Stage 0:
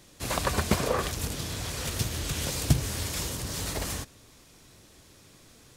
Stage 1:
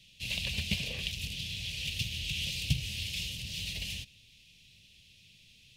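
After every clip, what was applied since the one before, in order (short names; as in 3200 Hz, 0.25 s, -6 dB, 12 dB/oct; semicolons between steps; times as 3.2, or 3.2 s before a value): EQ curve 190 Hz 0 dB, 310 Hz -16 dB, 590 Hz -13 dB, 1300 Hz -28 dB, 2700 Hz +15 dB, 7600 Hz -5 dB; gain -7 dB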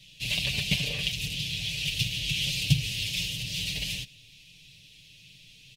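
comb 6.8 ms, depth 79%; gain +4 dB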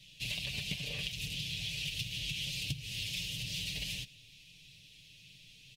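compressor 12:1, threshold -30 dBFS, peak gain reduction 15 dB; gain -4 dB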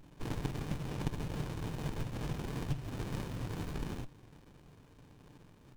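running maximum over 65 samples; gain +4 dB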